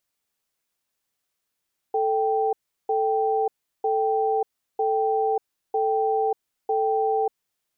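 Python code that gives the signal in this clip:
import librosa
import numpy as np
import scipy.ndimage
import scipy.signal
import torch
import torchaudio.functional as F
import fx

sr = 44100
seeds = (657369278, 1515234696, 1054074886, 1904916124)

y = fx.cadence(sr, length_s=5.59, low_hz=440.0, high_hz=782.0, on_s=0.59, off_s=0.36, level_db=-22.5)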